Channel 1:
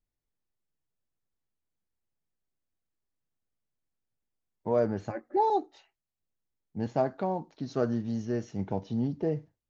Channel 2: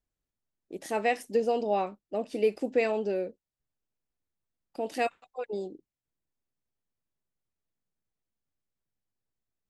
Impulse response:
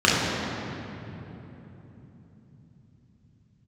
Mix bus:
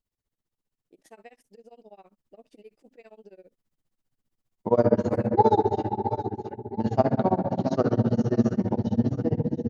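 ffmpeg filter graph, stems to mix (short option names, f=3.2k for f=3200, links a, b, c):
-filter_complex "[0:a]dynaudnorm=f=200:g=17:m=4dB,volume=3dB,asplit=3[a][b][c];[b]volume=-23dB[d];[c]volume=-9dB[e];[1:a]acompressor=threshold=-29dB:ratio=6,adelay=200,volume=-13dB[f];[2:a]atrim=start_sample=2205[g];[d][g]afir=irnorm=-1:irlink=0[h];[e]aecho=0:1:683|1366|2049|2732|3415|4098|4781:1|0.49|0.24|0.118|0.0576|0.0282|0.0138[i];[a][f][h][i]amix=inputs=4:normalize=0,tremolo=f=15:d=0.98"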